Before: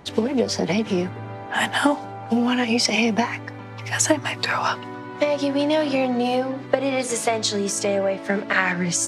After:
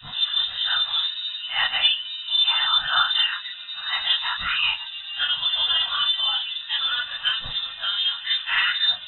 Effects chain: phase randomisation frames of 100 ms; static phaser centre 2.3 kHz, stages 8; frequency inversion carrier 3.8 kHz; trim +3 dB

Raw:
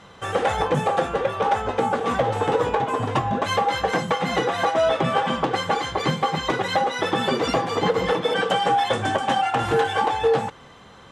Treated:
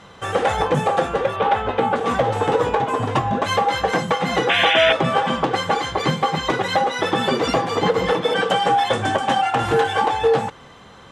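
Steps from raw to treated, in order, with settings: 1.36–1.96 s: resonant high shelf 4.5 kHz -8.5 dB, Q 1.5; 4.49–4.93 s: painted sound noise 1.4–3.6 kHz -21 dBFS; trim +2.5 dB

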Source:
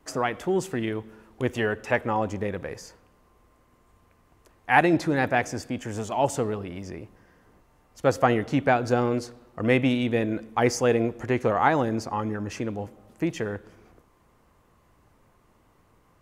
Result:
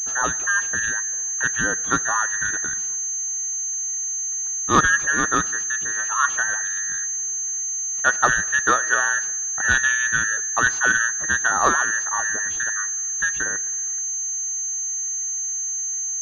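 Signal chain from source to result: every band turned upside down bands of 2 kHz; class-D stage that switches slowly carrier 6.3 kHz; trim +2.5 dB

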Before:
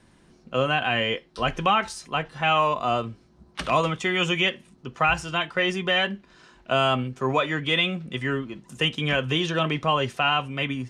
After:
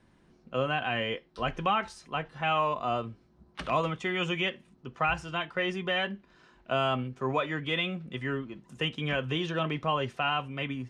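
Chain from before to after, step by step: treble shelf 4.9 kHz -10.5 dB; trim -5.5 dB

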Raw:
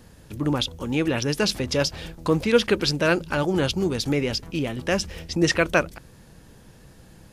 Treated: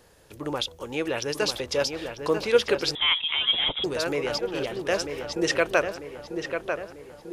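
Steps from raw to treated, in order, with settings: resonant low shelf 320 Hz -9 dB, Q 1.5; filtered feedback delay 944 ms, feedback 54%, low-pass 2.5 kHz, level -6 dB; 2.95–3.84 s: frequency inversion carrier 3.7 kHz; trim -3 dB

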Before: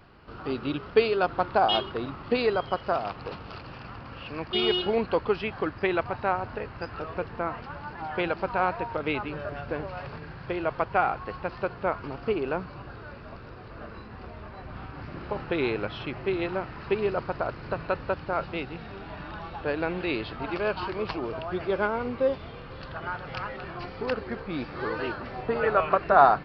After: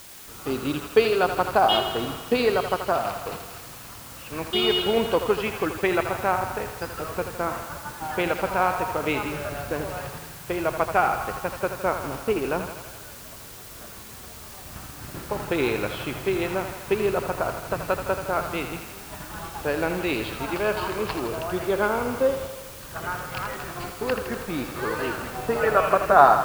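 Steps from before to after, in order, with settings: gate -38 dBFS, range -7 dB; in parallel at -8.5 dB: word length cut 6-bit, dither triangular; on the sum: thinning echo 81 ms, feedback 71%, high-pass 310 Hz, level -8.5 dB

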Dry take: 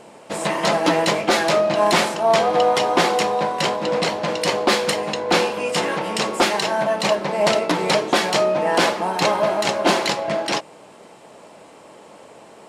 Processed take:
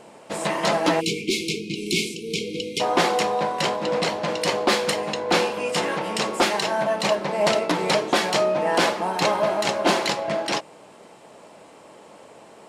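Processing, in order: spectral selection erased 1.01–2.80 s, 490–2100 Hz; trim -2.5 dB

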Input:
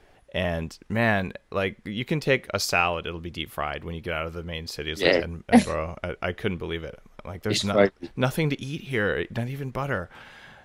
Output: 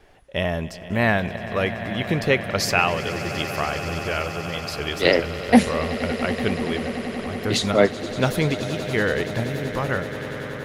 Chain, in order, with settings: wow and flutter 22 cents; echo with a slow build-up 95 ms, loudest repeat 8, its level -17.5 dB; trim +2.5 dB

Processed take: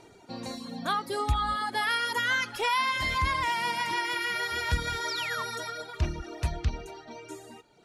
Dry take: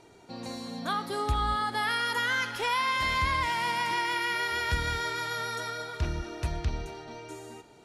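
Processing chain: reverb removal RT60 1.2 s; painted sound fall, 5.08–5.43 s, 970–6100 Hz -38 dBFS; trim +2.5 dB

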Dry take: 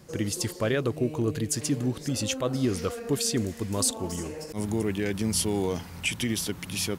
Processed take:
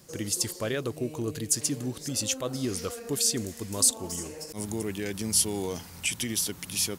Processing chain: tone controls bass -2 dB, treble +9 dB; crackle 82 per s -44 dBFS; trim -4 dB

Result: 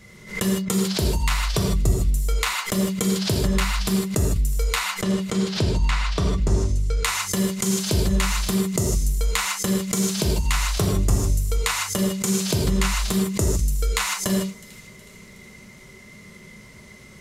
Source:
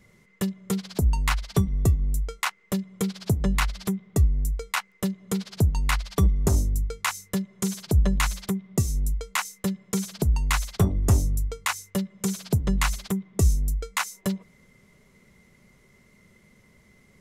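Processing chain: peaking EQ 4.8 kHz +5 dB 2.3 oct; compression 4:1, threshold -31 dBFS, peak gain reduction 14 dB; 4.91–7.02 s: distance through air 82 m; feedback echo behind a high-pass 368 ms, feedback 51%, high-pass 2.5 kHz, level -18.5 dB; gated-style reverb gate 180 ms flat, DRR -2 dB; swell ahead of each attack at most 130 dB/s; trim +7 dB

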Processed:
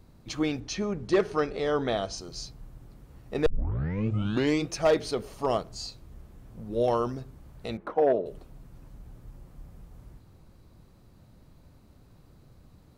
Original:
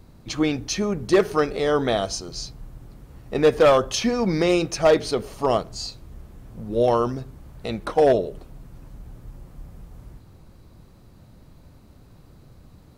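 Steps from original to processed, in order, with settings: 0.60–2.18 s: Bessel low-pass 5.9 kHz, order 2; 3.46 s: tape start 1.24 s; 7.77–8.26 s: three-band isolator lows -14 dB, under 170 Hz, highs -20 dB, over 2.1 kHz; trim -6 dB

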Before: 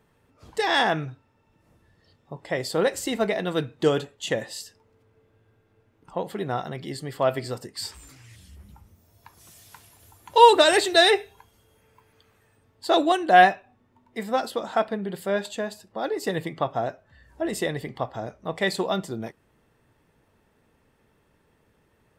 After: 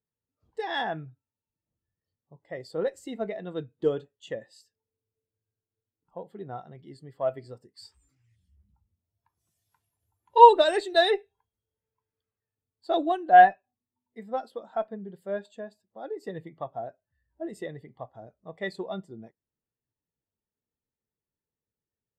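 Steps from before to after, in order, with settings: Chebyshev shaper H 6 -30 dB, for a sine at -2.5 dBFS; spectral contrast expander 1.5:1; trim +1.5 dB

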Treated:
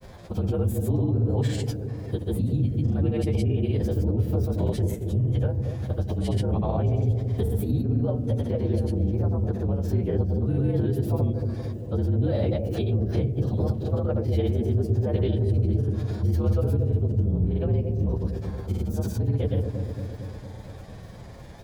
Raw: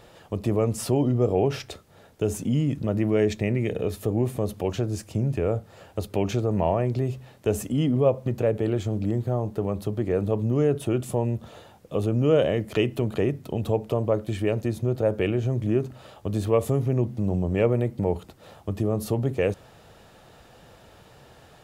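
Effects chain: frequency axis rescaled in octaves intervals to 115%; bass shelf 270 Hz +8.5 dB; in parallel at +2.5 dB: compression, threshold -31 dBFS, peak gain reduction 16 dB; on the sum: peak limiter -17 dBFS, peak gain reduction 11.5 dB; granulator, pitch spread up and down by 0 st; on a send: bucket-brigade echo 228 ms, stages 1024, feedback 66%, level -5.5 dB; on the sum: formant shift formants -2 st

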